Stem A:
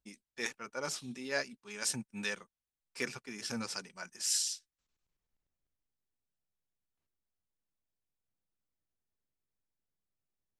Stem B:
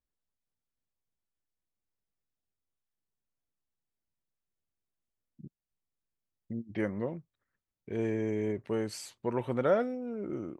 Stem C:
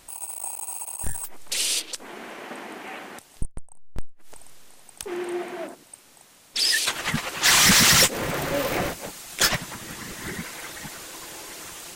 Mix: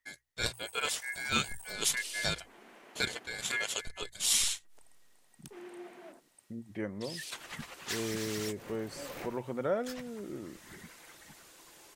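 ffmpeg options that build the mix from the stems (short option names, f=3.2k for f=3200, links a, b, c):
-filter_complex "[0:a]acontrast=85,aeval=exprs='val(0)*sin(2*PI*1900*n/s)':c=same,volume=0dB[a];[1:a]volume=-5dB,asplit=2[b][c];[2:a]adelay=450,volume=-17dB[d];[c]apad=whole_len=547143[e];[d][e]sidechaincompress=threshold=-41dB:ratio=6:attack=26:release=365[f];[a][b][f]amix=inputs=3:normalize=0,bandreject=f=60:t=h:w=6,bandreject=f=120:t=h:w=6"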